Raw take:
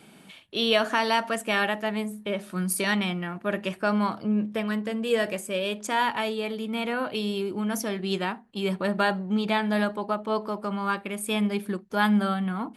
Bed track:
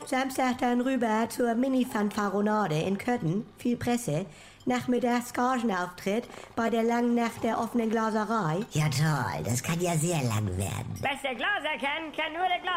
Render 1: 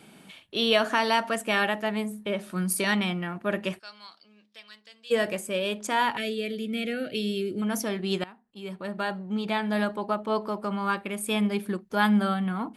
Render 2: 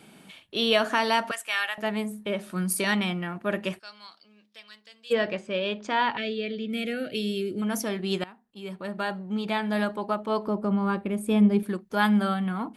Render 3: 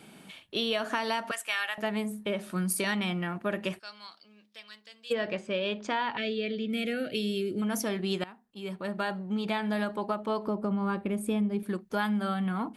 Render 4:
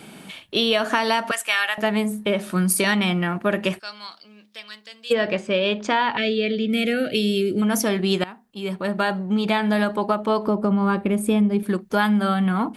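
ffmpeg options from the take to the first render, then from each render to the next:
ffmpeg -i in.wav -filter_complex "[0:a]asplit=3[link_01][link_02][link_03];[link_01]afade=type=out:start_time=3.78:duration=0.02[link_04];[link_02]bandpass=frequency=4500:width_type=q:width=2.8,afade=type=in:start_time=3.78:duration=0.02,afade=type=out:start_time=5.1:duration=0.02[link_05];[link_03]afade=type=in:start_time=5.1:duration=0.02[link_06];[link_04][link_05][link_06]amix=inputs=3:normalize=0,asettb=1/sr,asplit=3[link_07][link_08][link_09];[link_07]atrim=end=6.174[link_10];[link_08]atrim=start=6.17:end=7.62,asetpts=PTS-STARTPTS,afade=type=in:duration=0.004:curve=qsin,afade=type=out:start_time=1.446:duration=0.004:curve=qsin,asuperstop=centerf=980:order=4:qfactor=0.86[link_11];[link_09]atrim=start=7.616[link_12];[link_10][link_11]acrossfade=duration=0.004:curve1=hsin:curve2=qsin[link_13];[link_13][link_12]acrossfade=duration=0.004:curve1=qsin:curve2=hsin,asplit=2[link_14][link_15];[link_14]atrim=end=8.24,asetpts=PTS-STARTPTS,afade=type=out:start_time=8.236:duration=0.004:curve=hsin:silence=0.105925[link_16];[link_15]atrim=start=8.24,asetpts=PTS-STARTPTS,afade=type=in:duration=1.89:silence=0.105925[link_17];[link_16][link_17]concat=n=2:v=0:a=1" out.wav
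ffmpeg -i in.wav -filter_complex "[0:a]asettb=1/sr,asplit=3[link_01][link_02][link_03];[link_01]atrim=end=1.314[link_04];[link_02]atrim=start=1.31:end=1.78,asetpts=PTS-STARTPTS,afade=type=in:duration=0.004:curve=qsin,afade=type=out:start_time=0.466:duration=0.004:curve=qsin,highpass=1300[link_05];[link_03]atrim=start=1.776[link_06];[link_04][link_05]acrossfade=duration=0.004:curve1=hsin:curve2=qsin[link_07];[link_07][link_06]acrossfade=duration=0.004:curve1=qsin:curve2=hsin,asettb=1/sr,asplit=3[link_08][link_09][link_10];[link_08]atrim=end=5.134[link_11];[link_09]atrim=start=5.13:end=6.7,asetpts=PTS-STARTPTS,afade=type=in:duration=0.004:curve=qsin,afade=type=out:start_time=1.566:duration=0.004:curve=qsin,lowpass=frequency=4900:width=0.5412,lowpass=frequency=4900:width=1.3066[link_12];[link_10]atrim=start=6.696[link_13];[link_11][link_12]acrossfade=duration=0.004:curve1=hsin:curve2=qsin[link_14];[link_14][link_13]acrossfade=duration=0.004:curve1=qsin:curve2=hsin,asettb=1/sr,asplit=3[link_15][link_16][link_17];[link_15]atrim=end=10.474[link_18];[link_16]atrim=start=10.47:end=11.63,asetpts=PTS-STARTPTS,afade=type=in:duration=0.004:curve=qsin,afade=type=out:start_time=1.156:duration=0.004:curve=qsin,tiltshelf=frequency=720:gain=8[link_19];[link_17]atrim=start=11.626[link_20];[link_18][link_19]acrossfade=duration=0.004:curve1=hsin:curve2=qsin[link_21];[link_21][link_20]acrossfade=duration=0.004:curve1=qsin:curve2=hsin" out.wav
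ffmpeg -i in.wav -af "acompressor=threshold=-26dB:ratio=6" out.wav
ffmpeg -i in.wav -af "volume=9.5dB" out.wav

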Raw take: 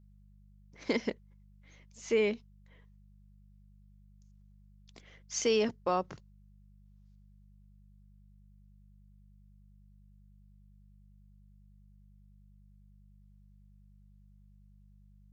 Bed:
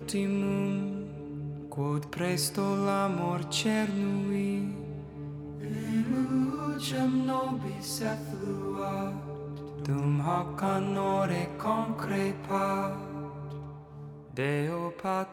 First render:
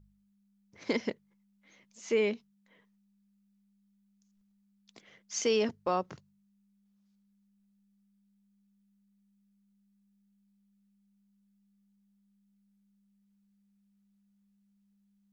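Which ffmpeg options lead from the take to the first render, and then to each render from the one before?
ffmpeg -i in.wav -af "bandreject=frequency=50:width_type=h:width=4,bandreject=frequency=100:width_type=h:width=4,bandreject=frequency=150:width_type=h:width=4" out.wav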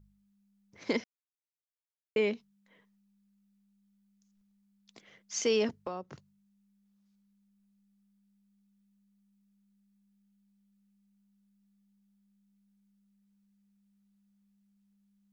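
ffmpeg -i in.wav -filter_complex "[0:a]asettb=1/sr,asplit=3[link_01][link_02][link_03];[link_01]atrim=end=5.734[link_04];[link_02]atrim=start=5.73:end=6.13,asetpts=PTS-STARTPTS,afade=type=in:duration=0.004:curve=qsin,afade=type=out:start_time=0.396:duration=0.004:curve=qsin,acrossover=split=320|640[link_05][link_06][link_07];[link_05]acompressor=threshold=-46dB:ratio=4[link_08];[link_06]acompressor=threshold=-43dB:ratio=4[link_09];[link_07]acompressor=threshold=-44dB:ratio=4[link_10];[link_08][link_09][link_10]amix=inputs=3:normalize=0[link_11];[link_03]atrim=start=6.126[link_12];[link_04][link_11]acrossfade=duration=0.004:curve1=hsin:curve2=qsin[link_13];[link_13][link_12]acrossfade=duration=0.004:curve1=qsin:curve2=hsin,asplit=3[link_14][link_15][link_16];[link_14]atrim=end=1.04,asetpts=PTS-STARTPTS,afade=type=out:start_time=1.036:duration=0.004:curve=hsin[link_17];[link_15]atrim=start=1.04:end=2.16,asetpts=PTS-STARTPTS,volume=0[link_18];[link_16]atrim=start=2.16,asetpts=PTS-STARTPTS,afade=type=in:duration=0.004:curve=hsin[link_19];[link_17][link_18][link_19]concat=n=3:v=0:a=1" out.wav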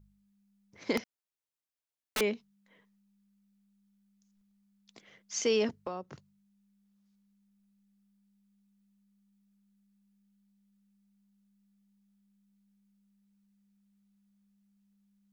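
ffmpeg -i in.wav -filter_complex "[0:a]asettb=1/sr,asplit=3[link_01][link_02][link_03];[link_01]atrim=end=0.974[link_04];[link_02]atrim=start=0.97:end=2.21,asetpts=PTS-STARTPTS,afade=type=in:duration=0.004:curve=qsin,afade=type=out:start_time=1.236:duration=0.004:curve=qsin,aeval=exprs='(mod(21.1*val(0)+1,2)-1)/21.1':channel_layout=same[link_05];[link_03]atrim=start=2.206[link_06];[link_04][link_05]acrossfade=duration=0.004:curve1=hsin:curve2=qsin[link_07];[link_07][link_06]acrossfade=duration=0.004:curve1=qsin:curve2=hsin" out.wav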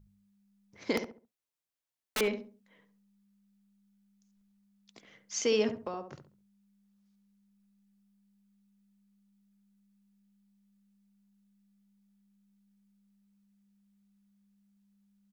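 ffmpeg -i in.wav -filter_complex "[0:a]asplit=2[link_01][link_02];[link_02]adelay=69,lowpass=frequency=1100:poles=1,volume=-7dB,asplit=2[link_03][link_04];[link_04]adelay=69,lowpass=frequency=1100:poles=1,volume=0.33,asplit=2[link_05][link_06];[link_06]adelay=69,lowpass=frequency=1100:poles=1,volume=0.33,asplit=2[link_07][link_08];[link_08]adelay=69,lowpass=frequency=1100:poles=1,volume=0.33[link_09];[link_01][link_03][link_05][link_07][link_09]amix=inputs=5:normalize=0" out.wav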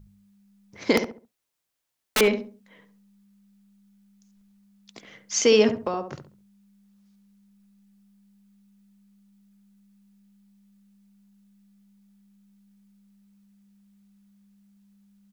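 ffmpeg -i in.wav -af "volume=10dB" out.wav

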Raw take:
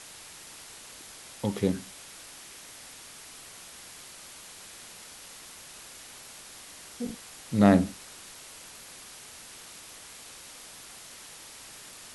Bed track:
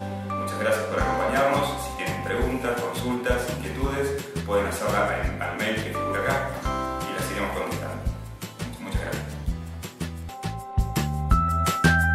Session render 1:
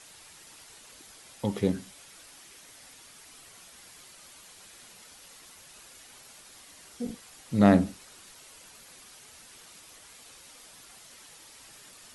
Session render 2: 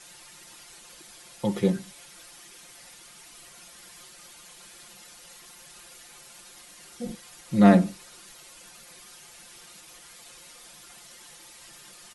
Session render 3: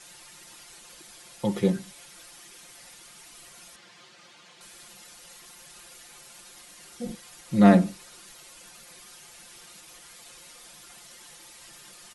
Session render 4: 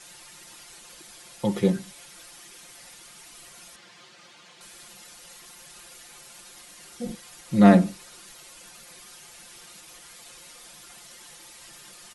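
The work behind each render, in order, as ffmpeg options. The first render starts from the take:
ffmpeg -i in.wav -af "afftdn=noise_reduction=7:noise_floor=-48" out.wav
ffmpeg -i in.wav -af "aecho=1:1:5.7:0.88" out.wav
ffmpeg -i in.wav -filter_complex "[0:a]asettb=1/sr,asplit=3[link_01][link_02][link_03];[link_01]atrim=end=3.764[link_04];[link_02]atrim=start=3.76:end=4.61,asetpts=PTS-STARTPTS,afade=type=in:duration=0.004:curve=qsin,afade=type=out:start_time=0.846:duration=0.004:curve=qsin,highpass=110,lowpass=4500[link_05];[link_03]atrim=start=4.606[link_06];[link_04][link_05]acrossfade=duration=0.004:curve1=hsin:curve2=qsin[link_07];[link_07][link_06]acrossfade=duration=0.004:curve1=qsin:curve2=hsin" out.wav
ffmpeg -i in.wav -af "volume=1.5dB" out.wav

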